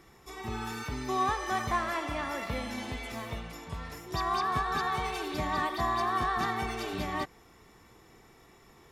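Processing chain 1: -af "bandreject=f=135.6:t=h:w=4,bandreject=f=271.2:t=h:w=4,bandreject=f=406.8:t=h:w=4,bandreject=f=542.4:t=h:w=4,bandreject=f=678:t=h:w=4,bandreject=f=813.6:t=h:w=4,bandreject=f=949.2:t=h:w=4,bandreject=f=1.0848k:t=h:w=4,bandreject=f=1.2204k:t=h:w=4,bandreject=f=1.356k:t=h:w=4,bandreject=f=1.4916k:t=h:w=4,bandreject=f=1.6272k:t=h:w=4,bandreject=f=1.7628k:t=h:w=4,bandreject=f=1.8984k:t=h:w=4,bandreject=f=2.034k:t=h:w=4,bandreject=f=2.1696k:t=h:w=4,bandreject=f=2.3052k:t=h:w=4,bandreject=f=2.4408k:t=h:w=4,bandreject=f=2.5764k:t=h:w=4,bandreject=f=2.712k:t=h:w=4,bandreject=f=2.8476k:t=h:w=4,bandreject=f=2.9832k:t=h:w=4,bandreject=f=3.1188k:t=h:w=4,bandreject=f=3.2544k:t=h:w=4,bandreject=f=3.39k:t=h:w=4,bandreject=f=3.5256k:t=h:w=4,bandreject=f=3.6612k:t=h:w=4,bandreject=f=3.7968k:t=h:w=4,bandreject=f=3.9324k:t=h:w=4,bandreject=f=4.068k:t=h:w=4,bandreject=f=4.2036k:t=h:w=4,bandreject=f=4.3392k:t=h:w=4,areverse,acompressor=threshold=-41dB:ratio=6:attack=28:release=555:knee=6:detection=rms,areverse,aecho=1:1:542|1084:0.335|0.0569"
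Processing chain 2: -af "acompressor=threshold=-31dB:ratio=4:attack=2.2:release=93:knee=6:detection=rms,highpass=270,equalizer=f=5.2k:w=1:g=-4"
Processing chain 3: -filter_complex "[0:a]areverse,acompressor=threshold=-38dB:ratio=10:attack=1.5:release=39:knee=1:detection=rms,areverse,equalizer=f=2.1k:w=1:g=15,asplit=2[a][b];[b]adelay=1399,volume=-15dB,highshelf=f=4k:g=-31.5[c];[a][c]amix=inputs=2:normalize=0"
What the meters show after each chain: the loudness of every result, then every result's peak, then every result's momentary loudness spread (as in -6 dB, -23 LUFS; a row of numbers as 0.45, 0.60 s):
-44.5, -38.0, -34.5 LUFS; -29.5, -25.0, -22.5 dBFS; 11, 9, 15 LU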